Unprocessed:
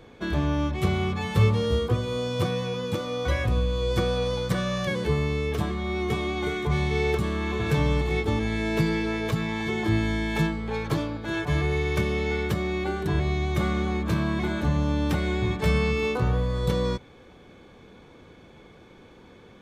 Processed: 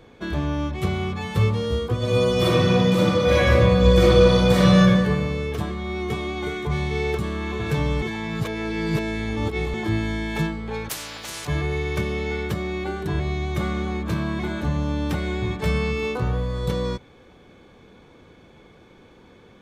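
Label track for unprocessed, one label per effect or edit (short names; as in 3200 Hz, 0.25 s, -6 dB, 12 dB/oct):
1.970000	4.780000	reverb throw, RT60 1.8 s, DRR -10.5 dB
8.020000	9.740000	reverse
10.890000	11.470000	spectral compressor 10:1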